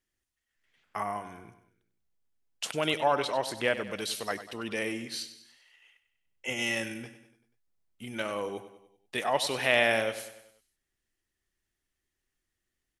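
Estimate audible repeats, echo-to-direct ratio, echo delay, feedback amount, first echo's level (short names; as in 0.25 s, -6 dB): 4, -11.5 dB, 97 ms, 51%, -13.0 dB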